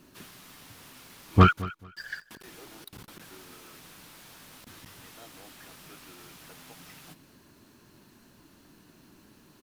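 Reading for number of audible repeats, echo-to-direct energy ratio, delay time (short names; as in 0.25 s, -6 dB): 2, -18.0 dB, 0.218 s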